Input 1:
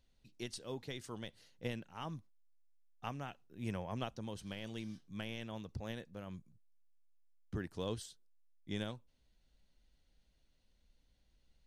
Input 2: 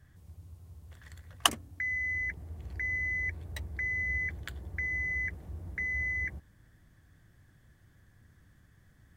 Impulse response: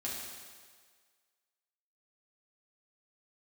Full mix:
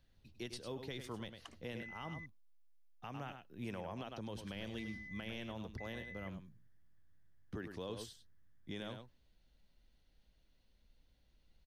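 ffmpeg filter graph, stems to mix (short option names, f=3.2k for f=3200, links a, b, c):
-filter_complex "[0:a]equalizer=f=7.7k:w=1.6:g=-7.5,acrossover=split=240|3000[a][b][c];[a]acompressor=threshold=-47dB:ratio=6[d];[d][b][c]amix=inputs=3:normalize=0,volume=1.5dB,asplit=2[e][f];[f]volume=-10dB[g];[1:a]lowpass=5.9k,volume=-18.5dB,asplit=3[h][i][j];[h]atrim=end=2.26,asetpts=PTS-STARTPTS,afade=t=out:st=2.256:d=0.004:c=hsin[k];[i]atrim=start=2.26:end=4.35,asetpts=PTS-STARTPTS,volume=0[l];[j]atrim=start=4.35,asetpts=PTS-STARTPTS,afade=t=in:d=0.004:c=hsin[m];[k][l][m]concat=n=3:v=0:a=1[n];[g]aecho=0:1:101:1[o];[e][n][o]amix=inputs=3:normalize=0,alimiter=level_in=10dB:limit=-24dB:level=0:latency=1:release=88,volume=-10dB"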